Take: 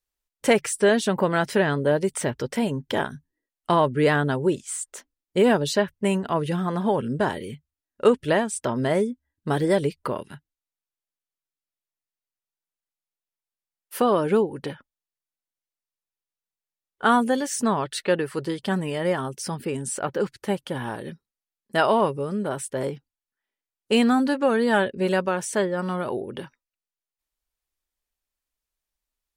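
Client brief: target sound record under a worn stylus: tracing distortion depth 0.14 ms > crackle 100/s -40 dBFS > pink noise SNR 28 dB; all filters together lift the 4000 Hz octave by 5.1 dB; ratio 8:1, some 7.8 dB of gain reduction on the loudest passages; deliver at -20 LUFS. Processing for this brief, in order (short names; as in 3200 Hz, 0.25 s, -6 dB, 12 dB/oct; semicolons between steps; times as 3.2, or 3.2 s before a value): bell 4000 Hz +7 dB; compressor 8:1, threshold -20 dBFS; tracing distortion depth 0.14 ms; crackle 100/s -40 dBFS; pink noise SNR 28 dB; gain +7 dB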